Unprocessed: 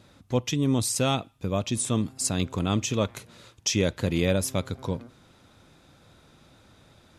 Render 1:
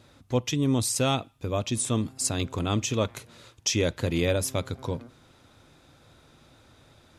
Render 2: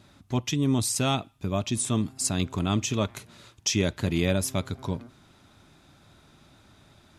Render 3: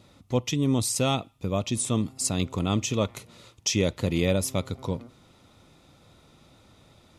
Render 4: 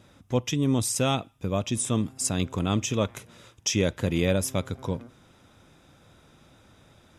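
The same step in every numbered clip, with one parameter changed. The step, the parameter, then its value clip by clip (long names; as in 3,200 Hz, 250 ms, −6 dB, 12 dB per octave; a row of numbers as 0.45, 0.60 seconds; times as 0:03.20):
notch filter, centre frequency: 190, 500, 1,600, 4,300 Hertz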